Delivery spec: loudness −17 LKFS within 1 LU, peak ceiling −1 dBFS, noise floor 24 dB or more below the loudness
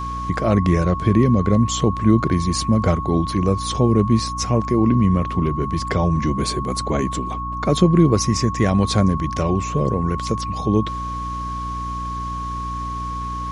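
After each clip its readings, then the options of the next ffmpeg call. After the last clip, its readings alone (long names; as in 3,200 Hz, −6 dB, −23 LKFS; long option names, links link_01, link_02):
mains hum 60 Hz; hum harmonics up to 300 Hz; level of the hum −28 dBFS; interfering tone 1,100 Hz; level of the tone −26 dBFS; integrated loudness −20.0 LKFS; sample peak −3.0 dBFS; target loudness −17.0 LKFS
→ -af "bandreject=frequency=60:width_type=h:width=4,bandreject=frequency=120:width_type=h:width=4,bandreject=frequency=180:width_type=h:width=4,bandreject=frequency=240:width_type=h:width=4,bandreject=frequency=300:width_type=h:width=4"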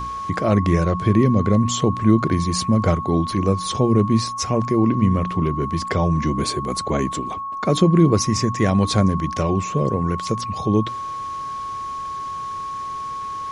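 mains hum none found; interfering tone 1,100 Hz; level of the tone −26 dBFS
→ -af "bandreject=frequency=1100:width=30"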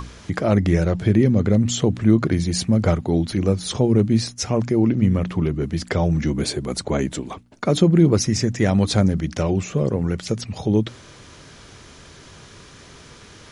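interfering tone none found; integrated loudness −20.5 LKFS; sample peak −3.5 dBFS; target loudness −17.0 LKFS
→ -af "volume=3.5dB,alimiter=limit=-1dB:level=0:latency=1"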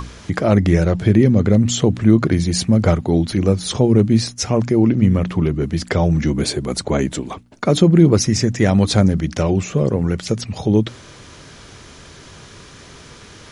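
integrated loudness −17.0 LKFS; sample peak −1.0 dBFS; background noise floor −42 dBFS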